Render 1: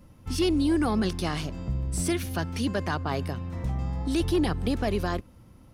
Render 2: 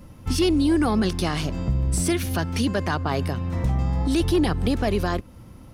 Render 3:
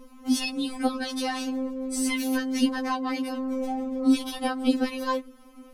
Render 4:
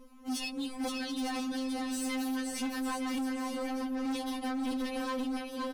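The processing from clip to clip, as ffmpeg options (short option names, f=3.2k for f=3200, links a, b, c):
-af "alimiter=limit=-22dB:level=0:latency=1:release=231,volume=8dB"
-af "afftfilt=real='re*3.46*eq(mod(b,12),0)':imag='im*3.46*eq(mod(b,12),0)':win_size=2048:overlap=0.75"
-af "aecho=1:1:520|910|1202|1422|1586:0.631|0.398|0.251|0.158|0.1,asoftclip=type=hard:threshold=-24.5dB,volume=-6.5dB"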